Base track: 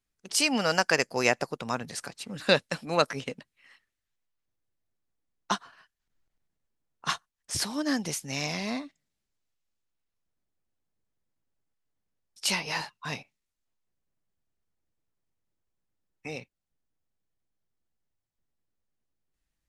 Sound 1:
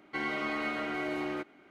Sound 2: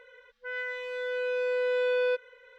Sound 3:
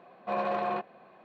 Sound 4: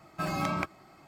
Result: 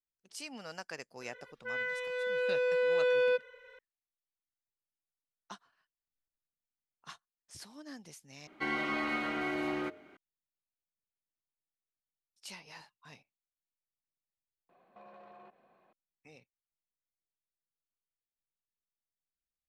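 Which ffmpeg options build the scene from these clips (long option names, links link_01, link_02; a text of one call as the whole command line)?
ffmpeg -i bed.wav -i cue0.wav -i cue1.wav -i cue2.wav -filter_complex "[0:a]volume=-19.5dB[link_01];[1:a]bandreject=frequency=88.3:width_type=h:width=4,bandreject=frequency=176.6:width_type=h:width=4,bandreject=frequency=264.9:width_type=h:width=4,bandreject=frequency=353.2:width_type=h:width=4,bandreject=frequency=441.5:width_type=h:width=4,bandreject=frequency=529.8:width_type=h:width=4,bandreject=frequency=618.1:width_type=h:width=4[link_02];[3:a]acompressor=threshold=-39dB:ratio=6:attack=3.2:release=140:knee=1:detection=peak[link_03];[link_01]asplit=2[link_04][link_05];[link_04]atrim=end=8.474[link_06];[link_02]atrim=end=1.7[link_07];[link_05]atrim=start=10.166[link_08];[2:a]atrim=end=2.58,asetpts=PTS-STARTPTS,volume=-1dB,afade=type=in:duration=0.004:curve=hsin,afade=type=out:start_time=2.576:duration=0.004:curve=hsin,adelay=1210[link_09];[link_03]atrim=end=1.24,asetpts=PTS-STARTPTS,volume=-13dB,afade=type=in:duration=0.004:curve=hsin,afade=type=out:start_time=1.236:duration=0.004:curve=hsin,adelay=14690[link_10];[link_06][link_07]acrossfade=duration=0.004:curve1=hsin:curve2=hsin[link_11];[link_11][link_08]acrossfade=duration=0.004:curve1=hsin:curve2=hsin[link_12];[link_12][link_09][link_10]amix=inputs=3:normalize=0" out.wav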